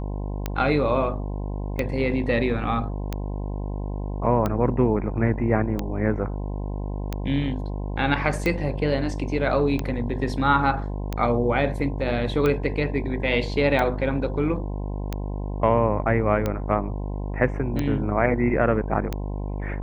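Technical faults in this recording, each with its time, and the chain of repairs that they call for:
mains buzz 50 Hz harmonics 21 −29 dBFS
scratch tick 45 rpm −12 dBFS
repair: click removal
hum removal 50 Hz, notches 21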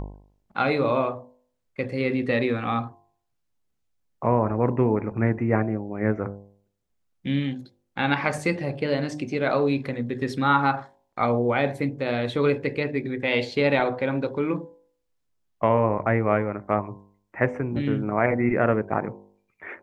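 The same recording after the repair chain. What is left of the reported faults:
none of them is left

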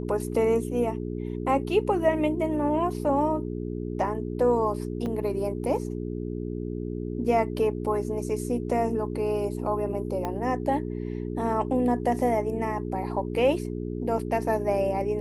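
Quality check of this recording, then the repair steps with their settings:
mains hum 60 Hz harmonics 7 −32 dBFS
0:05.06–0:05.07: drop-out 5 ms
0:10.25: click −17 dBFS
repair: click removal
hum removal 60 Hz, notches 7
repair the gap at 0:05.06, 5 ms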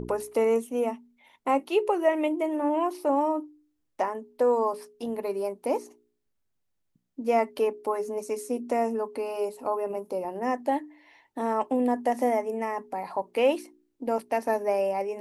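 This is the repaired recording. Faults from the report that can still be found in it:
0:10.25: click

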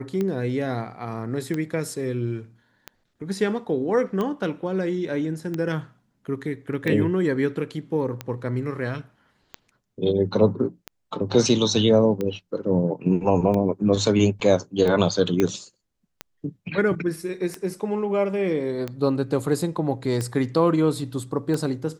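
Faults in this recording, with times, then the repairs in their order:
scratch tick 45 rpm −15 dBFS
0:15.40: click −9 dBFS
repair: click removal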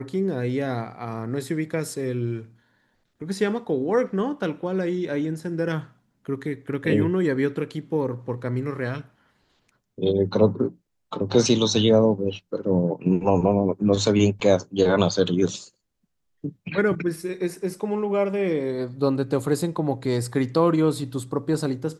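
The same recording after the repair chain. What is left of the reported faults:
0:15.40: click

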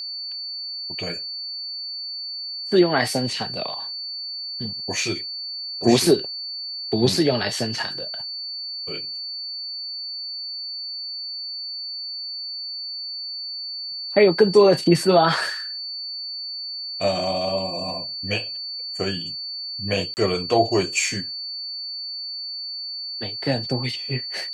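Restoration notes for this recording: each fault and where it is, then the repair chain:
whistle 4,500 Hz −29 dBFS
0:20.14–0:20.17: drop-out 29 ms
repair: notch filter 4,500 Hz, Q 30
repair the gap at 0:20.14, 29 ms

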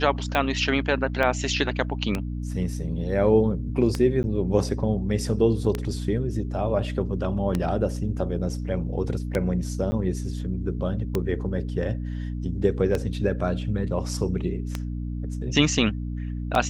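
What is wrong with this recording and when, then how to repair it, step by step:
mains hum 60 Hz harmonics 5 −30 dBFS
scratch tick 33 1/3 rpm −11 dBFS
0:01.23: drop-out 2.9 ms
0:04.23–0:04.24: drop-out 9.7 ms
0:09.91–0:09.92: drop-out 10 ms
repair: click removal
hum removal 60 Hz, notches 5
repair the gap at 0:01.23, 2.9 ms
repair the gap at 0:04.23, 9.7 ms
repair the gap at 0:09.91, 10 ms

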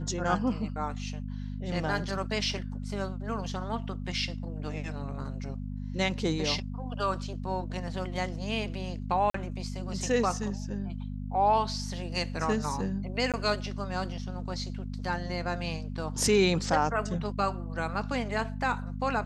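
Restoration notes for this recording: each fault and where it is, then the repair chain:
mains hum 50 Hz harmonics 5 −36 dBFS
0:09.30–0:09.34: drop-out 44 ms
0:13.32–0:13.34: drop-out 17 ms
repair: hum removal 50 Hz, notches 5
repair the gap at 0:09.30, 44 ms
repair the gap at 0:13.32, 17 ms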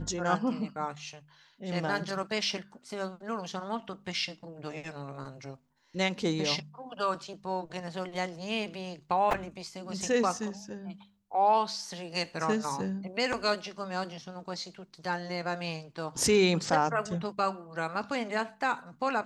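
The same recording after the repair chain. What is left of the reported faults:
none of them is left

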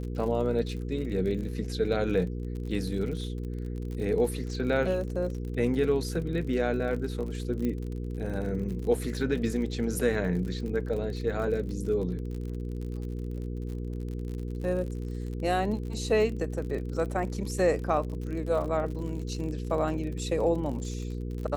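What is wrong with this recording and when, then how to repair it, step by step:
surface crackle 50 per second −36 dBFS
mains hum 60 Hz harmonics 8 −34 dBFS
0:07.65: click −20 dBFS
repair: click removal
hum removal 60 Hz, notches 8

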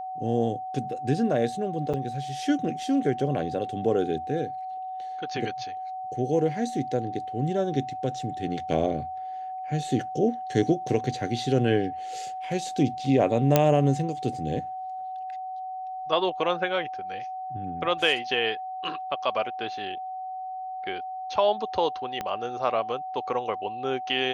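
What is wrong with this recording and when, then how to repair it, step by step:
whistle 750 Hz −32 dBFS
0:01.93–0:01.94: drop-out 6.7 ms
0:13.56: click −4 dBFS
0:22.21: click −16 dBFS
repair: click removal
notch filter 750 Hz, Q 30
repair the gap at 0:01.93, 6.7 ms

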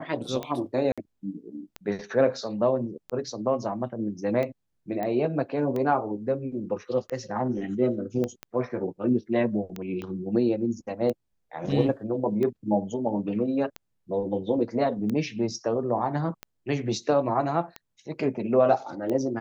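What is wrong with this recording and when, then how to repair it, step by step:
scratch tick 45 rpm −19 dBFS
0:00.92–0:00.98: drop-out 56 ms
0:05.03: click −19 dBFS
0:08.24: click −17 dBFS
0:10.02: click −23 dBFS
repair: click removal
repair the gap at 0:00.92, 56 ms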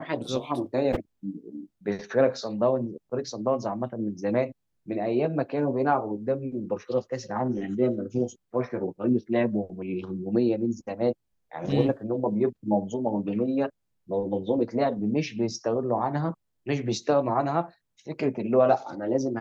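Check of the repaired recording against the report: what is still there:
0:08.24: click
0:10.02: click

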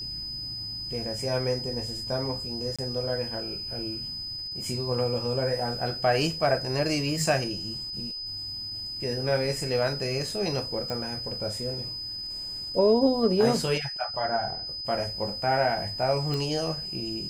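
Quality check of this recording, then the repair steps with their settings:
whistle 5,000 Hz −33 dBFS
0:02.76–0:02.79: drop-out 26 ms
0:10.90: click −19 dBFS
0:16.34: click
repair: click removal
notch filter 5,000 Hz, Q 30
repair the gap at 0:02.76, 26 ms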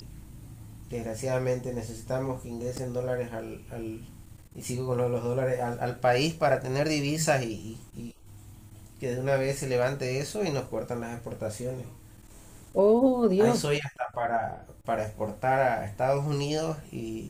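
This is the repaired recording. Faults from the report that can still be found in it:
none of them is left

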